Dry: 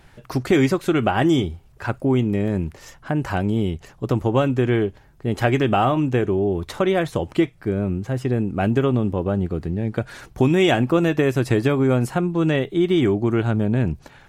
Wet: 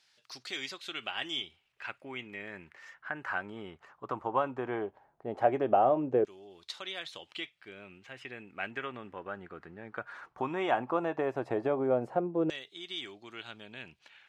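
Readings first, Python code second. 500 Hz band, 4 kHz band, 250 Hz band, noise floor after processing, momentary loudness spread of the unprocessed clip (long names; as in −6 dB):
−11.5 dB, −7.0 dB, −19.0 dB, −72 dBFS, 8 LU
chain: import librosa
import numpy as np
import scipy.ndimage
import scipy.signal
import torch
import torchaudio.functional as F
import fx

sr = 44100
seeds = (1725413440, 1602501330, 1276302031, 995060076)

y = fx.filter_lfo_bandpass(x, sr, shape='saw_down', hz=0.16, low_hz=510.0, high_hz=5000.0, q=2.3)
y = y * 10.0 ** (-1.5 / 20.0)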